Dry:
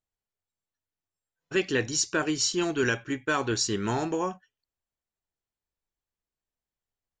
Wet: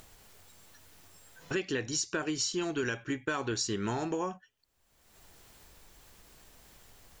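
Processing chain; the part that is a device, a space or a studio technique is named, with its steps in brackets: upward and downward compression (upward compressor, threshold -29 dBFS; compressor 6:1, threshold -29 dBFS, peak gain reduction 8.5 dB)

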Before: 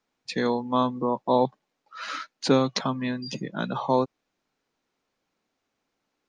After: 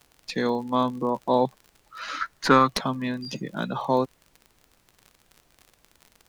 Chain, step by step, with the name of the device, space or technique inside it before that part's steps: 2.21–2.68 band shelf 1400 Hz +13.5 dB 1.3 oct; record under a worn stylus (tracing distortion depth 0.032 ms; crackle 38/s -35 dBFS; pink noise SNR 37 dB)

